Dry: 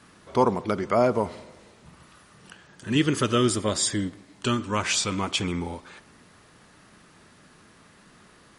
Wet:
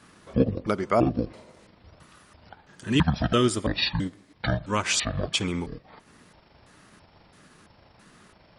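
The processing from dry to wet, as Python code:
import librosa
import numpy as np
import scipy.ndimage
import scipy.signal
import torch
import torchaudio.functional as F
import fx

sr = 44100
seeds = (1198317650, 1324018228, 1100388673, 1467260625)

y = fx.pitch_trill(x, sr, semitones=-11.5, every_ms=333)
y = fx.transient(y, sr, attack_db=1, sustain_db=-5)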